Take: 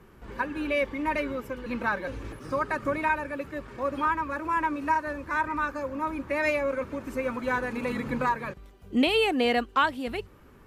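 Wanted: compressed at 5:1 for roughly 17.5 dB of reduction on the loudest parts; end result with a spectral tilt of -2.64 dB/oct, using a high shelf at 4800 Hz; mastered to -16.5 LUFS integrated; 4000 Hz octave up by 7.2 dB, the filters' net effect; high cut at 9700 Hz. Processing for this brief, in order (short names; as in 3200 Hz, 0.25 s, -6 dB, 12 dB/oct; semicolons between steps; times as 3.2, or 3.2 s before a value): LPF 9700 Hz; bell 4000 Hz +6.5 dB; high shelf 4800 Hz +8.5 dB; compressor 5:1, threshold -37 dBFS; gain +23 dB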